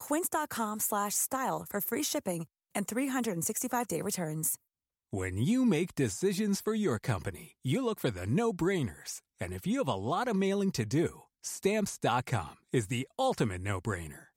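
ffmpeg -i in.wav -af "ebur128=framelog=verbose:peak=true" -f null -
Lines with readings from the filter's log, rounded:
Integrated loudness:
  I:         -32.2 LUFS
  Threshold: -42.2 LUFS
Loudness range:
  LRA:         1.7 LU
  Threshold: -52.3 LUFS
  LRA low:   -33.2 LUFS
  LRA high:  -31.5 LUFS
True peak:
  Peak:      -15.6 dBFS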